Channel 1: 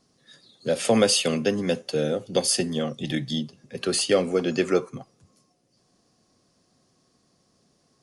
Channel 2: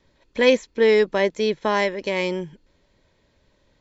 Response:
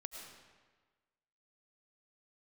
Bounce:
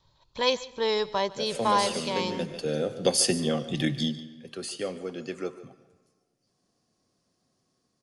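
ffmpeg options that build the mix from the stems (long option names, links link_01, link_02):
-filter_complex "[0:a]dynaudnorm=framelen=130:gausssize=11:maxgain=10.5dB,adelay=700,volume=-8.5dB,afade=type=out:start_time=4.02:duration=0.2:silence=0.251189,asplit=3[link_01][link_02][link_03];[link_02]volume=-8dB[link_04];[link_03]volume=-16dB[link_05];[1:a]equalizer=frequency=125:width_type=o:width=1:gain=10,equalizer=frequency=250:width_type=o:width=1:gain=-11,equalizer=frequency=500:width_type=o:width=1:gain=-5,equalizer=frequency=1000:width_type=o:width=1:gain=11,equalizer=frequency=2000:width_type=o:width=1:gain=-12,equalizer=frequency=4000:width_type=o:width=1:gain=10,volume=-6dB,asplit=4[link_06][link_07][link_08][link_09];[link_07]volume=-15dB[link_10];[link_08]volume=-19.5dB[link_11];[link_09]apad=whole_len=384993[link_12];[link_01][link_12]sidechaincompress=threshold=-39dB:ratio=8:attack=16:release=875[link_13];[2:a]atrim=start_sample=2205[link_14];[link_04][link_10]amix=inputs=2:normalize=0[link_15];[link_15][link_14]afir=irnorm=-1:irlink=0[link_16];[link_05][link_11]amix=inputs=2:normalize=0,aecho=0:1:147:1[link_17];[link_13][link_06][link_16][link_17]amix=inputs=4:normalize=0"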